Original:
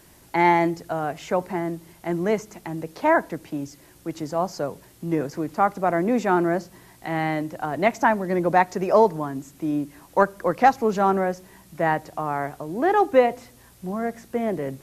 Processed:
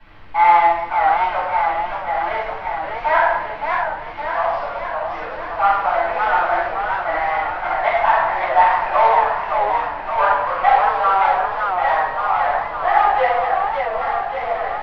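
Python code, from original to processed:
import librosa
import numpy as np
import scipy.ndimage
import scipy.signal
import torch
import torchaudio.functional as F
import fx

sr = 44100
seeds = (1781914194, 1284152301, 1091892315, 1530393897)

p1 = fx.cvsd(x, sr, bps=32000)
p2 = scipy.signal.sosfilt(scipy.signal.butter(4, 850.0, 'highpass', fs=sr, output='sos'), p1)
p3 = fx.high_shelf(p2, sr, hz=4100.0, db=-8.0)
p4 = 10.0 ** (-14.5 / 20.0) * np.tanh(p3 / 10.0 ** (-14.5 / 20.0))
p5 = p3 + (p4 * librosa.db_to_amplitude(-4.5))
p6 = fx.dmg_noise_colour(p5, sr, seeds[0], colour='pink', level_db=-56.0)
p7 = fx.air_absorb(p6, sr, metres=410.0)
p8 = fx.room_shoebox(p7, sr, seeds[1], volume_m3=440.0, walls='mixed', distance_m=8.3)
p9 = fx.echo_warbled(p8, sr, ms=566, feedback_pct=65, rate_hz=2.8, cents=144, wet_db=-5.0)
y = p9 * librosa.db_to_amplitude(-6.0)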